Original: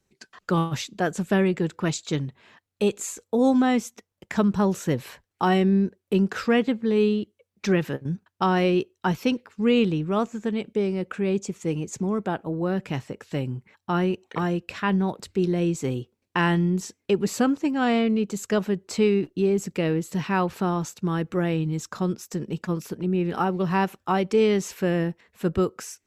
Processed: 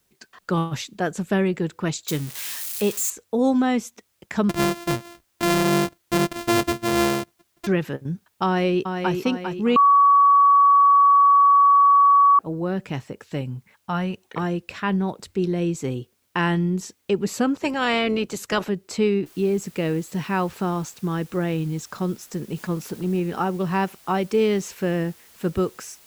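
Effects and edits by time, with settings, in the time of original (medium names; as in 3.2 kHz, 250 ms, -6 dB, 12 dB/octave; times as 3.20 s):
2.08–3.10 s: zero-crossing glitches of -21 dBFS
4.49–7.67 s: sorted samples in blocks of 128 samples
8.45–9.13 s: echo throw 400 ms, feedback 50%, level -6 dB
9.76–12.39 s: bleep 1.13 kHz -11 dBFS
13.41–14.25 s: peaking EQ 350 Hz -11 dB 0.43 oct
17.54–18.68 s: spectral peaks clipped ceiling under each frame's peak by 15 dB
19.26 s: noise floor step -70 dB -52 dB
22.56–23.20 s: companding laws mixed up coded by mu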